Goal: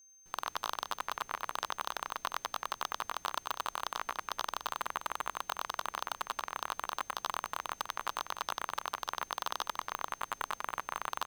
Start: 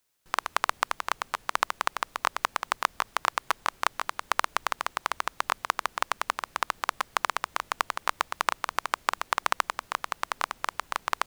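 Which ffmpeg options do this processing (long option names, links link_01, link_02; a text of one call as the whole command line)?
ffmpeg -i in.wav -af "aeval=exprs='0.237*(abs(mod(val(0)/0.237+3,4)-2)-1)':channel_layout=same,aecho=1:1:93.29|291.5:0.891|0.355,aeval=exprs='val(0)+0.00282*sin(2*PI*6300*n/s)':channel_layout=same,volume=-7dB" out.wav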